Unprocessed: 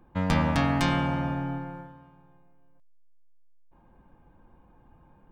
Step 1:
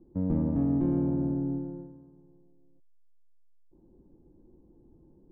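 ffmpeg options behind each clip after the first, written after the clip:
-filter_complex "[0:a]asplit=2[a][b];[b]alimiter=limit=-19dB:level=0:latency=1,volume=-2dB[c];[a][c]amix=inputs=2:normalize=0,lowpass=f=360:t=q:w=4.2,volume=-8.5dB"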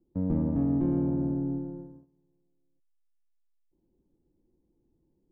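-af "agate=range=-14dB:threshold=-50dB:ratio=16:detection=peak"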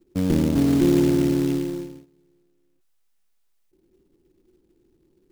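-af "equalizer=f=380:w=3.5:g=11,acrusher=bits=4:mode=log:mix=0:aa=0.000001,volume=5.5dB"

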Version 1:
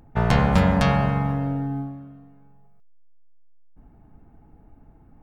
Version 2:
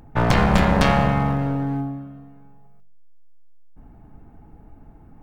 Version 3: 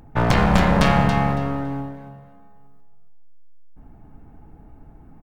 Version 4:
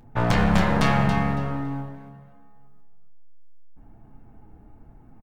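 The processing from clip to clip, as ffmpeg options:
-af "bandreject=f=46.72:t=h:w=4,bandreject=f=93.44:t=h:w=4,bandreject=f=140.16:t=h:w=4,bandreject=f=186.88:t=h:w=4,bandreject=f=233.6:t=h:w=4,bandreject=f=280.32:t=h:w=4,bandreject=f=327.04:t=h:w=4,bandreject=f=373.76:t=h:w=4,bandreject=f=420.48:t=h:w=4,bandreject=f=467.2:t=h:w=4,bandreject=f=513.92:t=h:w=4,bandreject=f=560.64:t=h:w=4,bandreject=f=607.36:t=h:w=4,bandreject=f=654.08:t=h:w=4,bandreject=f=700.8:t=h:w=4,aeval=exprs='clip(val(0),-1,0.0596)':c=same,volume=5.5dB"
-af "aecho=1:1:279|558|837:0.355|0.0745|0.0156"
-filter_complex "[0:a]flanger=delay=8.1:depth=2:regen=-41:speed=1.2:shape=sinusoidal,asplit=2[a][b];[b]adelay=28,volume=-11.5dB[c];[a][c]amix=inputs=2:normalize=0"

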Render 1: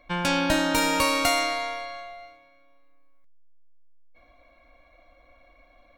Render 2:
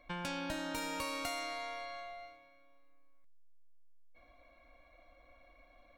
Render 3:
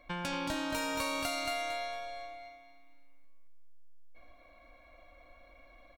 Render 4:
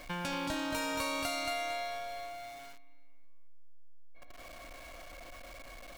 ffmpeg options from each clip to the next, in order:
-af "acompressor=threshold=-36dB:ratio=2.5,volume=-5.5dB"
-af "aecho=1:1:226|452|678|904:0.631|0.17|0.046|0.0124,volume=3dB"
-af "aeval=exprs='val(0)+0.5*0.00668*sgn(val(0))':c=same,volume=-1.5dB"

